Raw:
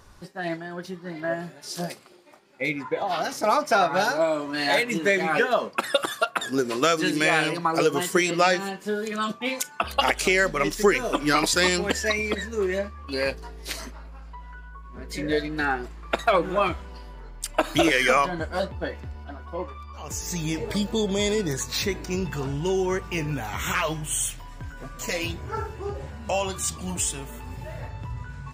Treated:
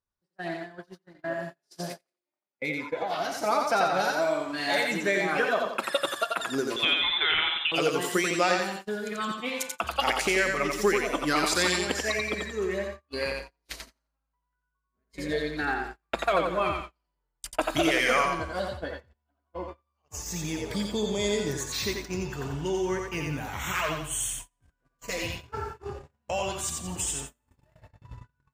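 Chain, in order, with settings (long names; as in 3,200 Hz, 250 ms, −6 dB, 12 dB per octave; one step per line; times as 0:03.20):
0:06.76–0:07.72: voice inversion scrambler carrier 3,800 Hz
feedback echo with a high-pass in the loop 88 ms, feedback 41%, high-pass 340 Hz, level −3 dB
noise gate −31 dBFS, range −36 dB
level −5 dB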